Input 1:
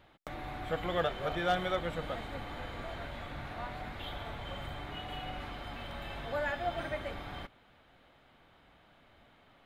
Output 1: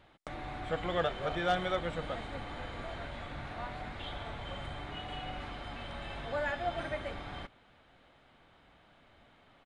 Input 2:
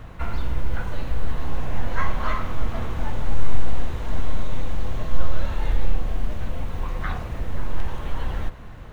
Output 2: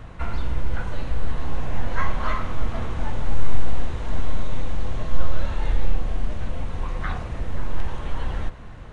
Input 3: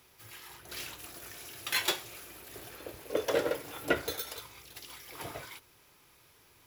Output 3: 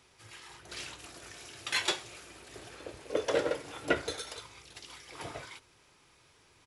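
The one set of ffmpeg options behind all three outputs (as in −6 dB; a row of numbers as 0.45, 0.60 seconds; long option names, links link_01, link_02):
-af "aresample=22050,aresample=44100"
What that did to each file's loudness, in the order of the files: 0.0, 0.0, 0.0 LU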